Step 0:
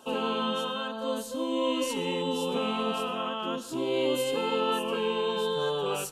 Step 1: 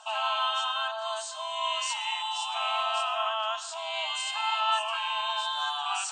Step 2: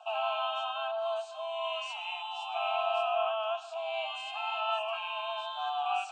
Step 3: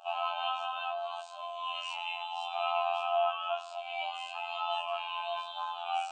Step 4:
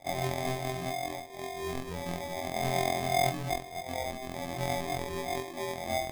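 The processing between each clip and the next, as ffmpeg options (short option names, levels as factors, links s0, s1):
-af "afftfilt=real='re*between(b*sr/4096,610,8800)':imag='im*between(b*sr/4096,610,8800)':win_size=4096:overlap=0.75,areverse,acompressor=mode=upward:threshold=0.0141:ratio=2.5,areverse,volume=1.68"
-filter_complex "[0:a]asplit=3[s0][s1][s2];[s0]bandpass=f=730:t=q:w=8,volume=1[s3];[s1]bandpass=f=1090:t=q:w=8,volume=0.501[s4];[s2]bandpass=f=2440:t=q:w=8,volume=0.355[s5];[s3][s4][s5]amix=inputs=3:normalize=0,equalizer=f=1100:t=o:w=0.23:g=-9.5,volume=2.66"
-af "flanger=delay=18:depth=4.2:speed=0.34,afftfilt=real='hypot(re,im)*cos(PI*b)':imag='0':win_size=2048:overlap=0.75,volume=2"
-af "acrusher=samples=31:mix=1:aa=0.000001,volume=1.19"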